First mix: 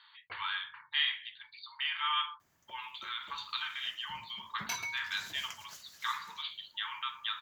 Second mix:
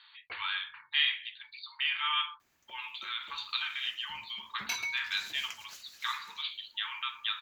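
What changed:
first sound +3.5 dB; master: add graphic EQ with 31 bands 100 Hz -10 dB, 160 Hz -11 dB, 630 Hz -3 dB, 1 kHz -3 dB, 2.5 kHz +7 dB, 4 kHz +5 dB

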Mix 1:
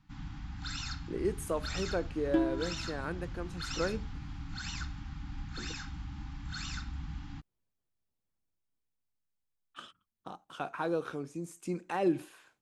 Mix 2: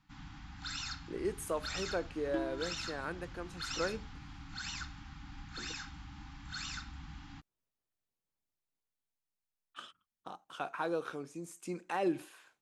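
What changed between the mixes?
second sound -5.0 dB; master: add bass shelf 300 Hz -9 dB

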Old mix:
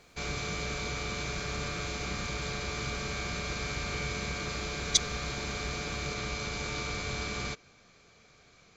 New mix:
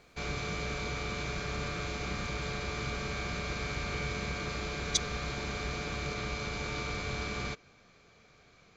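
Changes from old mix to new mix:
speech -5.0 dB; background: add treble shelf 6.5 kHz -11.5 dB

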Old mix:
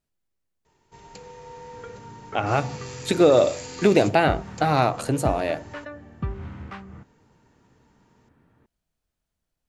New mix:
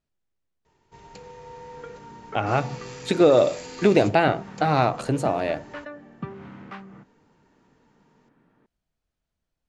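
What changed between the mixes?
second sound: add high-pass 150 Hz 24 dB/octave; master: add distance through air 59 m

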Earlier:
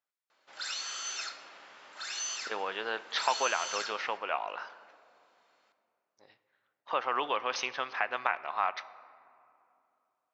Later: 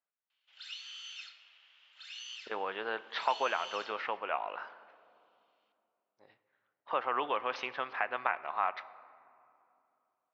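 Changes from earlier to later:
speech: add distance through air 280 m; background: add band-pass filter 3 kHz, Q 4.7

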